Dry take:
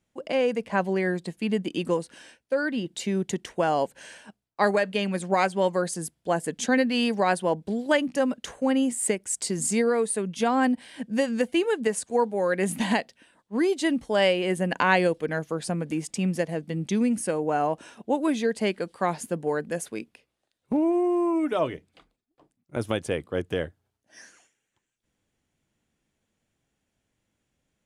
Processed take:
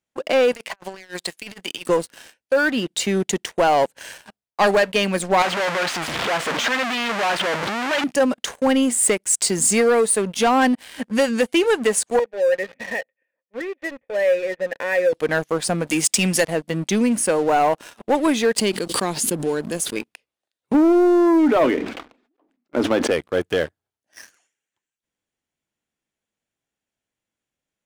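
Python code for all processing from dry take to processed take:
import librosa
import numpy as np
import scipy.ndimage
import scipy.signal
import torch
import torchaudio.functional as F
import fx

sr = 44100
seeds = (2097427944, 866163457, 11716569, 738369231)

y = fx.chain(x, sr, fx.highpass(hz=1300.0, slope=6),
    fx.over_compress(threshold_db=-40.0, ratio=-0.5), at=(0.52, 1.89))
y = fx.chain(y, sr, fx.clip_1bit(),
    fx.lowpass(hz=3000.0, slope=12),
    fx.low_shelf(hz=480.0, db=-11.5), at=(5.42, 8.04))
y = fx.chain(y, sr, fx.dead_time(dead_ms=0.11),
    fx.formant_cascade(vowel='e'),
    fx.high_shelf(hz=2700.0, db=11.0), at=(12.19, 15.13))
y = fx.chain(y, sr, fx.highpass(hz=54.0, slope=12),
    fx.high_shelf(hz=2300.0, db=12.0), at=(15.87, 16.45))
y = fx.chain(y, sr, fx.band_shelf(hz=1100.0, db=-10.5, octaves=2.5),
    fx.pre_swell(db_per_s=51.0), at=(18.58, 19.96))
y = fx.chain(y, sr, fx.lowpass(hz=2400.0, slope=12),
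    fx.low_shelf_res(hz=180.0, db=-11.0, q=3.0),
    fx.sustainer(db_per_s=61.0), at=(20.74, 23.11))
y = fx.low_shelf(y, sr, hz=280.0, db=-10.5)
y = fx.leveller(y, sr, passes=3)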